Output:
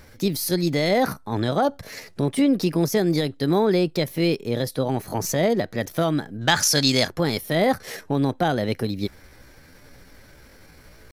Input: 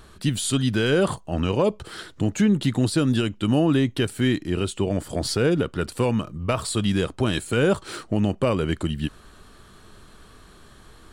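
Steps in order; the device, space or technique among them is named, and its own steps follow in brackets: chipmunk voice (pitch shift +5 st); 6.41–7.08 s: FFT filter 400 Hz 0 dB, 7.5 kHz +15 dB, 12 kHz +1 dB

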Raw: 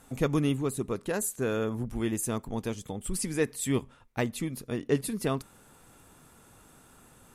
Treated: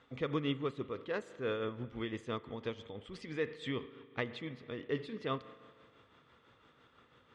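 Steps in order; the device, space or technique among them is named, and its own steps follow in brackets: combo amplifier with spring reverb and tremolo (spring tank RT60 1.9 s, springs 39 ms, chirp 70 ms, DRR 14 dB; tremolo 6 Hz, depth 46%; cabinet simulation 76–4400 Hz, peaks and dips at 190 Hz -6 dB, 490 Hz +6 dB, 750 Hz -4 dB, 1.2 kHz +7 dB, 2 kHz +8 dB, 3.3 kHz +9 dB); trim -7 dB

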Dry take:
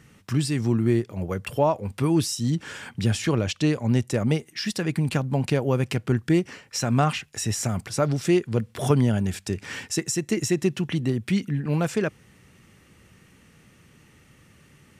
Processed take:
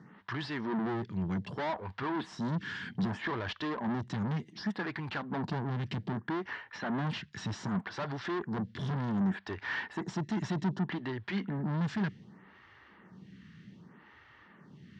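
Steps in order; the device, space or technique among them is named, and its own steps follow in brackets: vibe pedal into a guitar amplifier (lamp-driven phase shifter 0.65 Hz; valve stage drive 35 dB, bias 0.4; cabinet simulation 93–4200 Hz, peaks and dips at 190 Hz +8 dB, 520 Hz -7 dB, 960 Hz +7 dB, 1.7 kHz +6 dB, 2.5 kHz -7 dB); 6.51–7.07 s: peaking EQ 4.9 kHz -6.5 dB 0.42 oct; trim +3 dB

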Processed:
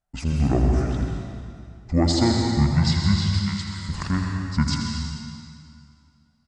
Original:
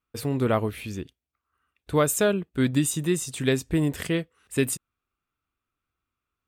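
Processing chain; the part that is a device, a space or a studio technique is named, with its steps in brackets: 3.34–3.89 s: differentiator; monster voice (pitch shift -10 st; bass shelf 100 Hz +6.5 dB; delay 82 ms -9 dB; reverberation RT60 2.3 s, pre-delay 116 ms, DRR 1 dB)

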